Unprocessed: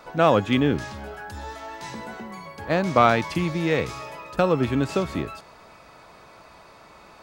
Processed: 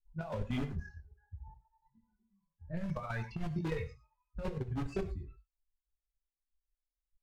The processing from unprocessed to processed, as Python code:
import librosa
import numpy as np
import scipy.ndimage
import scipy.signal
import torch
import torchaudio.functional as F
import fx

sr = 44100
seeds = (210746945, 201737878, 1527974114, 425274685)

p1 = fx.bin_expand(x, sr, power=3.0)
p2 = (np.mod(10.0 ** (25.5 / 20.0) * p1 + 1.0, 2.0) - 1.0) / 10.0 ** (25.5 / 20.0)
p3 = p1 + F.gain(torch.from_numpy(p2), -7.0).numpy()
p4 = fx.riaa(p3, sr, side='playback')
p5 = fx.level_steps(p4, sr, step_db=11)
p6 = fx.chorus_voices(p5, sr, voices=4, hz=0.57, base_ms=22, depth_ms=3.8, mix_pct=50)
p7 = fx.env_lowpass(p6, sr, base_hz=420.0, full_db=-27.5)
p8 = fx.peak_eq(p7, sr, hz=280.0, db=-7.5, octaves=0.73)
p9 = fx.over_compress(p8, sr, threshold_db=-31.0, ratio=-0.5)
p10 = fx.rev_gated(p9, sr, seeds[0], gate_ms=130, shape='flat', drr_db=10.5)
y = F.gain(torch.from_numpy(p10), -4.0).numpy()